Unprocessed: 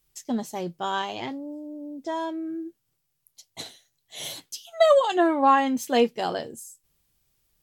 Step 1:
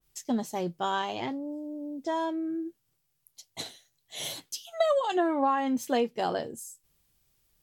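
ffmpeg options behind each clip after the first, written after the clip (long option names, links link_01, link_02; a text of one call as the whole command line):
ffmpeg -i in.wav -af "acompressor=threshold=-23dB:ratio=4,adynamicequalizer=threshold=0.00631:dfrequency=1800:dqfactor=0.7:tfrequency=1800:tqfactor=0.7:attack=5:release=100:ratio=0.375:range=2.5:mode=cutabove:tftype=highshelf" out.wav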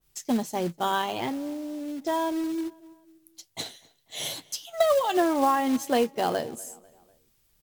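ffmpeg -i in.wav -filter_complex "[0:a]asplit=2[link_01][link_02];[link_02]adelay=247,lowpass=frequency=3600:poles=1,volume=-22.5dB,asplit=2[link_03][link_04];[link_04]adelay=247,lowpass=frequency=3600:poles=1,volume=0.51,asplit=2[link_05][link_06];[link_06]adelay=247,lowpass=frequency=3600:poles=1,volume=0.51[link_07];[link_01][link_03][link_05][link_07]amix=inputs=4:normalize=0,acrusher=bits=4:mode=log:mix=0:aa=0.000001,volume=3dB" out.wav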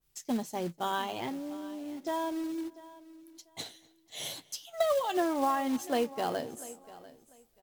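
ffmpeg -i in.wav -af "aecho=1:1:694|1388:0.119|0.025,volume=-6dB" out.wav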